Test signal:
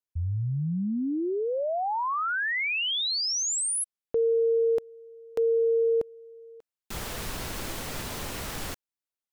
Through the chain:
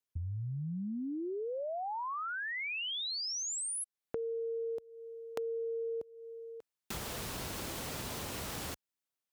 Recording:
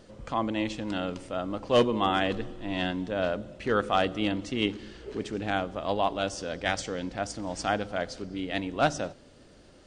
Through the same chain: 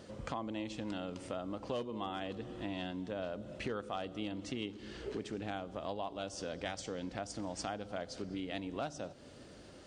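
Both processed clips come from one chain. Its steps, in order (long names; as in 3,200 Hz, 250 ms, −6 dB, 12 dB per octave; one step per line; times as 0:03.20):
high-pass filter 55 Hz
dynamic equaliser 1,800 Hz, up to −5 dB, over −43 dBFS, Q 1.4
downward compressor 6 to 1, threshold −38 dBFS
level +1 dB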